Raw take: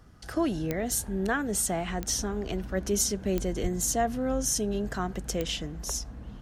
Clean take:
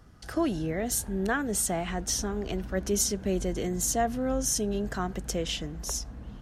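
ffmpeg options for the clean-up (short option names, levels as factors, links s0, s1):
-filter_complex "[0:a]adeclick=t=4,asplit=3[s0][s1][s2];[s0]afade=t=out:st=3.62:d=0.02[s3];[s1]highpass=f=140:w=0.5412,highpass=f=140:w=1.3066,afade=t=in:st=3.62:d=0.02,afade=t=out:st=3.74:d=0.02[s4];[s2]afade=t=in:st=3.74:d=0.02[s5];[s3][s4][s5]amix=inputs=3:normalize=0"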